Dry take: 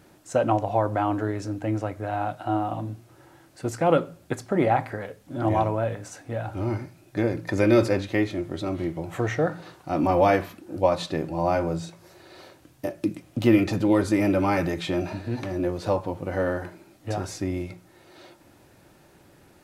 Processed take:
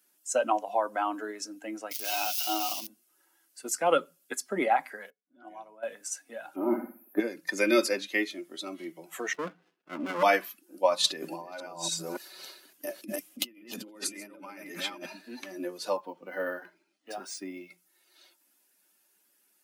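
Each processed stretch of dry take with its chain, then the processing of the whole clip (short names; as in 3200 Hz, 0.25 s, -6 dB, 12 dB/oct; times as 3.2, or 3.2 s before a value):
1.91–2.87 switching spikes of -30.5 dBFS + band shelf 3700 Hz +10.5 dB
5.1–5.83 low-pass opened by the level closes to 1800 Hz, open at -20.5 dBFS + low shelf 300 Hz +4.5 dB + resonator 740 Hz, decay 0.43 s, mix 80%
6.56–7.2 EQ curve 140 Hz 0 dB, 250 Hz +9 dB, 1000 Hz +7 dB, 1700 Hz 0 dB, 4000 Hz -12 dB, 7500 Hz -25 dB, 12000 Hz +8 dB + flutter echo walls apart 10.1 m, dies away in 0.57 s
9.33–10.23 air absorption 350 m + running maximum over 33 samples
11.04–15.06 reverse delay 0.282 s, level -2.5 dB + negative-ratio compressor -30 dBFS + mismatched tape noise reduction decoder only
15.97–17.71 high shelf 9000 Hz -11 dB + decimation joined by straight lines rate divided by 3×
whole clip: per-bin expansion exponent 1.5; steep high-pass 190 Hz 48 dB/oct; tilt +3.5 dB/oct; gain +1 dB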